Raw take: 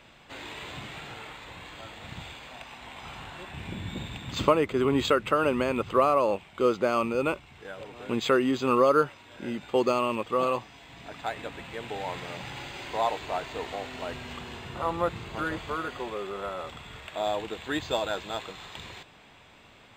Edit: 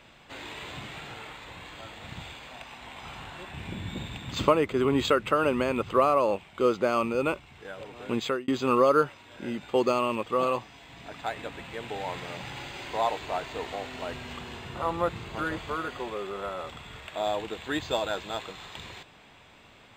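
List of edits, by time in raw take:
8.17–8.48 fade out

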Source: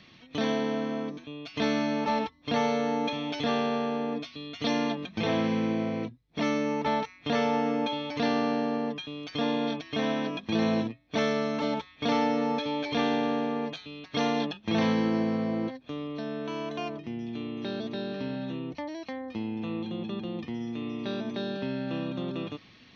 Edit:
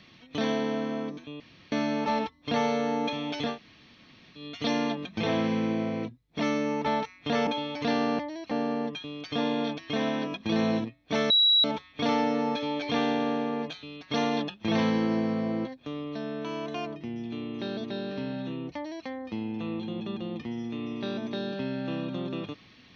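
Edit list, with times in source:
1.4–1.72 room tone
3.51–4.38 room tone, crossfade 0.16 s
7.47–7.82 cut
11.33–11.67 bleep 3890 Hz -17.5 dBFS
18.78–19.1 copy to 8.54

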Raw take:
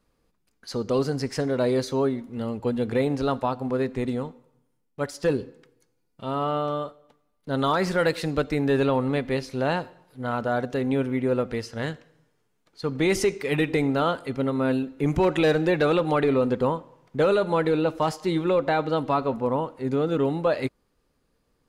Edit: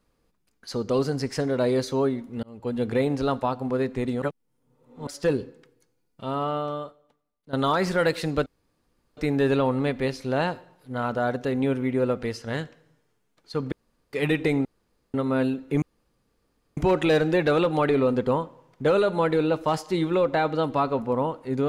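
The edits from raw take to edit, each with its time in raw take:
2.43–2.82 fade in
4.22–5.07 reverse
6.25–7.53 fade out, to -14.5 dB
8.46 insert room tone 0.71 s
13.01–13.42 room tone
13.94–14.43 room tone
15.11 insert room tone 0.95 s

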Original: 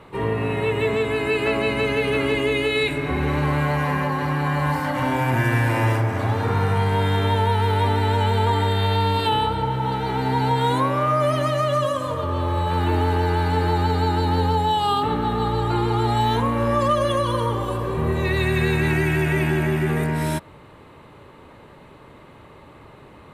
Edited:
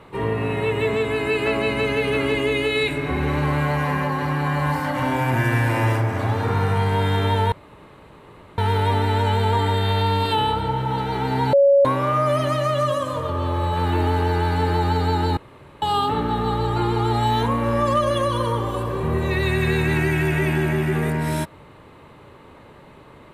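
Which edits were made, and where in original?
7.52 insert room tone 1.06 s
10.47–10.79 bleep 559 Hz -10.5 dBFS
14.31–14.76 room tone

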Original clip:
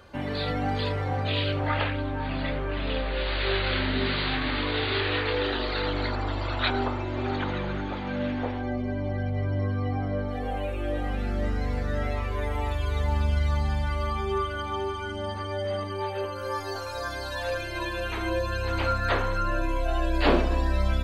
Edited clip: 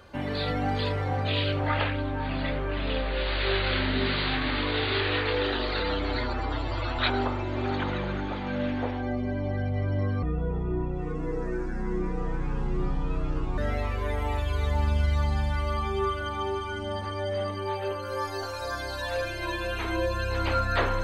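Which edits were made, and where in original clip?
5.8–6.59 stretch 1.5×
9.83–11.91 speed 62%

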